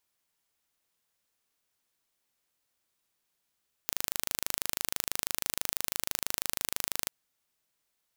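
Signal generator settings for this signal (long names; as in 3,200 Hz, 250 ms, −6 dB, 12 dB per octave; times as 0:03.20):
impulse train 26.1 per second, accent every 0, −2.5 dBFS 3.19 s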